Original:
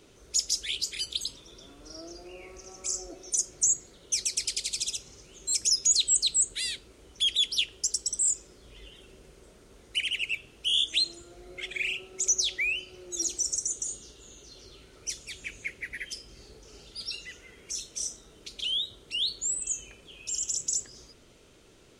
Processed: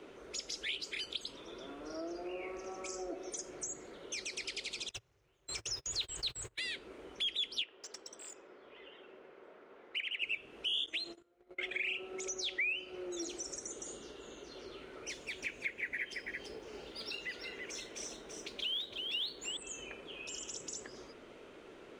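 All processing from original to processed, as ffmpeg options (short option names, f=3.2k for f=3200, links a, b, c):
-filter_complex "[0:a]asettb=1/sr,asplit=3[a][b][c];[a]atrim=end=4.894[d];[b]atrim=start=4.89:end=6.59,asetpts=PTS-STARTPTS,afade=t=in:d=0.004:c=qsin,afade=t=out:st=1.696:d=0.004:c=qsin,aeval=exprs='val(0)+0.5*0.0168*sgn(val(0))':c=same,agate=range=-36dB:threshold=-31dB:ratio=16:release=100:detection=peak,lowshelf=f=160:t=q:w=3:g=10.5[e];[c]atrim=start=6.586[f];[d][e]acrossfade=d=0.004:c1=hsin:c2=qsin[g];[g][f]acrossfade=d=0.004:c1=qsin:c2=hsin,asettb=1/sr,asplit=3[h][i][j];[h]atrim=end=7.624[k];[i]atrim=start=7.62:end=10.22,asetpts=PTS-STARTPTS,afade=t=in:d=0.004:c=qsin,afade=t=out:st=2.596:d=0.004:c=qsin,highpass=f=740:p=1,highshelf=f=2.8k:g=-7.5,adynamicsmooth=sensitivity=5.5:basefreq=4.4k[l];[j]atrim=start=10.216[m];[k][l]acrossfade=d=0.004:c1=hsin:c2=qsin[n];[n][m]acrossfade=d=0.004:c1=qsin:c2=hsin,asettb=1/sr,asplit=3[o][p][q];[o]atrim=end=10.864[r];[p]atrim=start=10.86:end=11.87,asetpts=PTS-STARTPTS,afade=t=in:d=0.004:c=qsin,afade=t=out:st=1.006:d=0.004:c=qsin,agate=range=-28dB:threshold=-45dB:ratio=16:release=100:detection=peak,acompressor=threshold=-29dB:ratio=2:attack=3.2:release=140:knee=1:detection=peak,acrusher=bits=8:mode=log:mix=0:aa=0.000001[s];[q]atrim=start=11.866[t];[r][s]acrossfade=d=0.004:c1=hsin:c2=qsin[u];[u][t]acrossfade=d=0.004:c1=qsin:c2=hsin,asettb=1/sr,asplit=3[v][w][x];[v]atrim=end=15.094[y];[w]atrim=start=15.09:end=19.57,asetpts=PTS-STARTPTS,afade=t=in:d=0.004:c=qsin,afade=t=out:st=4.476:d=0.004:c=qsin,acrusher=bits=5:mode=log:mix=0:aa=0.000001,bandreject=f=1.3k:w=13,aecho=1:1:334:0.422,atrim=end_sample=197568[z];[x]atrim=start=19.566[aa];[y][z]acrossfade=d=0.004:c1=hsin:c2=qsin[ab];[ab][aa]acrossfade=d=0.004:c1=qsin:c2=hsin,acrossover=split=6700[ac][ad];[ad]acompressor=threshold=-42dB:ratio=4:attack=1:release=60[ae];[ac][ae]amix=inputs=2:normalize=0,acrossover=split=230 2700:gain=0.158 1 0.126[af][ag][ah];[af][ag][ah]amix=inputs=3:normalize=0,acompressor=threshold=-47dB:ratio=2,volume=7dB"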